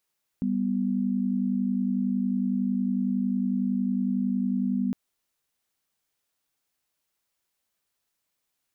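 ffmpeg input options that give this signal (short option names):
-f lavfi -i "aevalsrc='0.0501*(sin(2*PI*196*t)+sin(2*PI*246.94*t))':d=4.51:s=44100"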